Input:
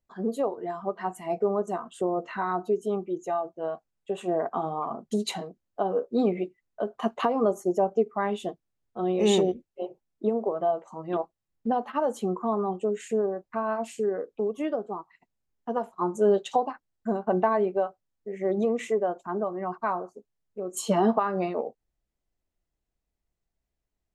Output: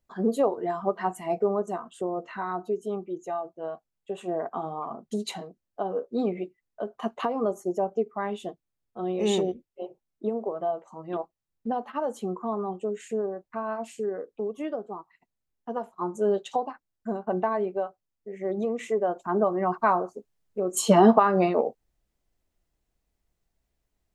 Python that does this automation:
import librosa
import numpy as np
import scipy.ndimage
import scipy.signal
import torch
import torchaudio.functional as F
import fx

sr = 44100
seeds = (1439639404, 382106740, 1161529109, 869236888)

y = fx.gain(x, sr, db=fx.line((0.91, 4.0), (2.04, -3.0), (18.76, -3.0), (19.43, 6.0)))